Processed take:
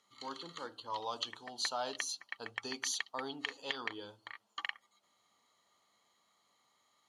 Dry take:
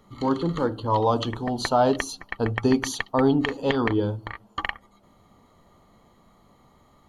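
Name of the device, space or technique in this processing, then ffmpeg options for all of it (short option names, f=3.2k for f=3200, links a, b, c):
piezo pickup straight into a mixer: -af "lowpass=6k,aderivative,volume=1.5dB"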